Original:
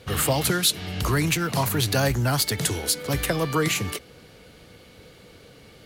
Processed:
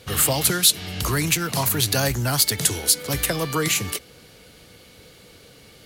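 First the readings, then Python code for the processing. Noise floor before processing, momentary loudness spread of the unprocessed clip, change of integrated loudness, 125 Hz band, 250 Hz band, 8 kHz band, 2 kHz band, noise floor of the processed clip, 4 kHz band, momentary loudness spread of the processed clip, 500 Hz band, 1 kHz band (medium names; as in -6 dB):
-50 dBFS, 4 LU, +3.0 dB, -1.0 dB, -1.0 dB, +6.5 dB, +1.0 dB, -49 dBFS, +3.5 dB, 6 LU, -1.0 dB, -0.5 dB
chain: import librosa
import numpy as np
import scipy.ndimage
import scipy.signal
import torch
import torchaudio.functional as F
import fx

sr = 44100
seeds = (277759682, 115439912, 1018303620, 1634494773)

y = fx.high_shelf(x, sr, hz=3600.0, db=8.5)
y = y * 10.0 ** (-1.0 / 20.0)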